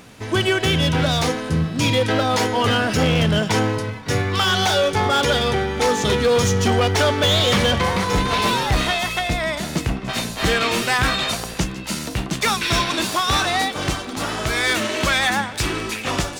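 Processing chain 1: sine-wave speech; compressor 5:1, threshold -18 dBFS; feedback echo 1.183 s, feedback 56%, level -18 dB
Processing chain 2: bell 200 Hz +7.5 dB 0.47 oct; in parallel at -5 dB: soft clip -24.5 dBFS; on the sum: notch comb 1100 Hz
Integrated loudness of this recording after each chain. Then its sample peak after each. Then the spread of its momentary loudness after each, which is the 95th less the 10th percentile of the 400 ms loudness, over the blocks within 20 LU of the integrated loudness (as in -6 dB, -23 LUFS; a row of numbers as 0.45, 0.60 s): -23.0, -18.0 LUFS; -10.0, -5.5 dBFS; 9, 6 LU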